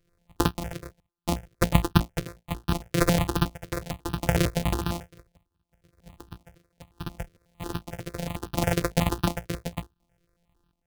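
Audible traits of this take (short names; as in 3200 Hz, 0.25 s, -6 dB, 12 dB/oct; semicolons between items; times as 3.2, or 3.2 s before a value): a buzz of ramps at a fixed pitch in blocks of 256 samples; chopped level 0.7 Hz, depth 60%, duty 50%; notches that jump at a steady rate 11 Hz 230–2100 Hz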